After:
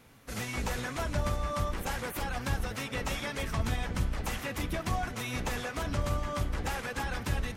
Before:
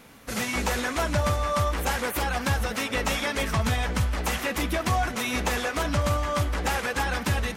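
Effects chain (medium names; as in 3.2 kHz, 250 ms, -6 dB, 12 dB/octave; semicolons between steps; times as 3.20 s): octave divider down 1 oct, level +1 dB; trim -8.5 dB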